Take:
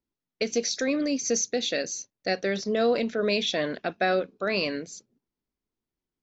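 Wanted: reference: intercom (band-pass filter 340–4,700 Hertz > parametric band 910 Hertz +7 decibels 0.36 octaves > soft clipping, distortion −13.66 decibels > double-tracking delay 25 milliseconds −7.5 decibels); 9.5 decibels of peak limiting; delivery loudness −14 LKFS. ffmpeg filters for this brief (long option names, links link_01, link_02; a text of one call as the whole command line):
ffmpeg -i in.wav -filter_complex "[0:a]alimiter=limit=-23.5dB:level=0:latency=1,highpass=340,lowpass=4700,equalizer=frequency=910:width_type=o:width=0.36:gain=7,asoftclip=threshold=-30.5dB,asplit=2[link_01][link_02];[link_02]adelay=25,volume=-7.5dB[link_03];[link_01][link_03]amix=inputs=2:normalize=0,volume=23dB" out.wav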